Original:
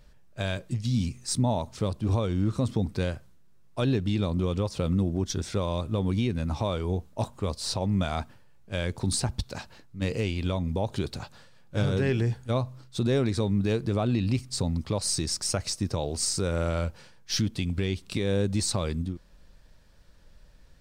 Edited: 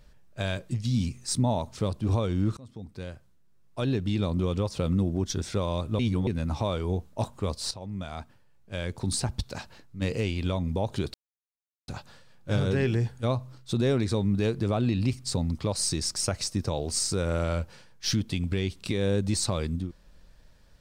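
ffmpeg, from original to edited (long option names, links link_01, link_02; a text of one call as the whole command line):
ffmpeg -i in.wav -filter_complex "[0:a]asplit=6[link_01][link_02][link_03][link_04][link_05][link_06];[link_01]atrim=end=2.57,asetpts=PTS-STARTPTS,afade=type=out:start_time=2.566:duration=0.004:curve=hsin:silence=0.0630957[link_07];[link_02]atrim=start=2.57:end=5.992,asetpts=PTS-STARTPTS,afade=type=in:duration=1.7:silence=0.0630957[link_08];[link_03]atrim=start=5.988:end=6.272,asetpts=PTS-STARTPTS,areverse[link_09];[link_04]atrim=start=6.268:end=7.71,asetpts=PTS-STARTPTS,afade=type=out:start_time=1.438:duration=0.004:curve=hsin:silence=0.223872[link_10];[link_05]atrim=start=7.71:end=11.14,asetpts=PTS-STARTPTS,afade=type=in:duration=1.77:silence=0.223872,afade=type=out:start_time=3.426:duration=0.004:curve=hsin,apad=pad_dur=0.74[link_11];[link_06]atrim=start=11.14,asetpts=PTS-STARTPTS,afade=type=in:duration=0.004:curve=hsin[link_12];[link_07][link_08]concat=n=2:v=0:a=1[link_13];[link_13][link_09]acrossfade=duration=0.004:curve1=hsin:curve2=hsin[link_14];[link_10][link_11][link_12]concat=n=3:v=0:a=1[link_15];[link_14][link_15]acrossfade=duration=0.004:curve1=hsin:curve2=hsin" out.wav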